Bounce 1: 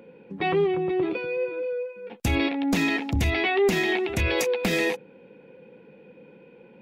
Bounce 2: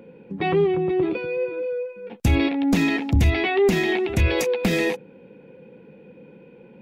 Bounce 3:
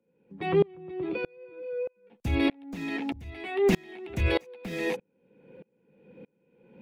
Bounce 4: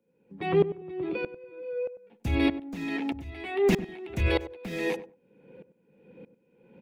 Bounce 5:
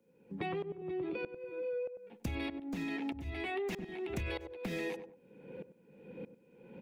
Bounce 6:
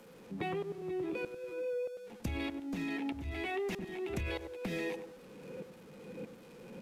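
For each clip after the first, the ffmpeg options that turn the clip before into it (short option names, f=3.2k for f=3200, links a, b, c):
-af "lowshelf=f=320:g=7.5"
-filter_complex "[0:a]acrossover=split=130|610|3100[a][b][c][d];[d]asoftclip=type=hard:threshold=-35dB[e];[a][b][c][e]amix=inputs=4:normalize=0,aeval=exprs='val(0)*pow(10,-31*if(lt(mod(-1.6*n/s,1),2*abs(-1.6)/1000),1-mod(-1.6*n/s,1)/(2*abs(-1.6)/1000),(mod(-1.6*n/s,1)-2*abs(-1.6)/1000)/(1-2*abs(-1.6)/1000))/20)':c=same"
-filter_complex "[0:a]asplit=2[a][b];[b]adelay=97,lowpass=f=990:p=1,volume=-12dB,asplit=2[c][d];[d]adelay=97,lowpass=f=990:p=1,volume=0.19[e];[a][c][e]amix=inputs=3:normalize=0"
-filter_complex "[0:a]acrossover=split=570[a][b];[a]alimiter=limit=-23dB:level=0:latency=1[c];[c][b]amix=inputs=2:normalize=0,acompressor=threshold=-38dB:ratio=10,volume=3dB"
-af "aeval=exprs='val(0)+0.5*0.00282*sgn(val(0))':c=same" -ar 32000 -c:a libvorbis -b:a 128k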